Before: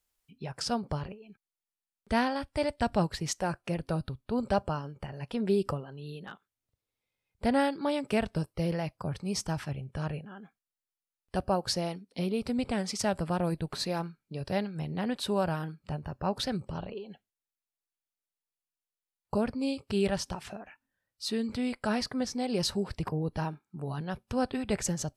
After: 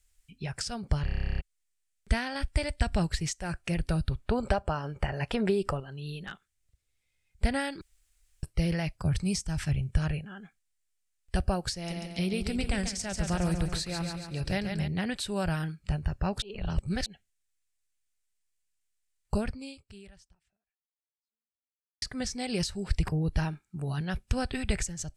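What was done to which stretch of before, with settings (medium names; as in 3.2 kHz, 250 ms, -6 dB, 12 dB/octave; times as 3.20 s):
1.05 s: stutter in place 0.03 s, 12 plays
4.11–5.80 s: peaking EQ 770 Hz +12 dB 2.8 oct
7.81–8.43 s: room tone
9.05–9.99 s: tone controls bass +4 dB, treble +3 dB
11.74–14.88 s: feedback delay 140 ms, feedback 50%, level -8 dB
16.42–17.06 s: reverse
19.37–22.02 s: fade out exponential
whole clip: graphic EQ 125/250/500/1000/2000/8000 Hz -8/-11/-9/-10/+4/+11 dB; compression 6:1, threshold -35 dBFS; tilt EQ -2.5 dB/octave; trim +8 dB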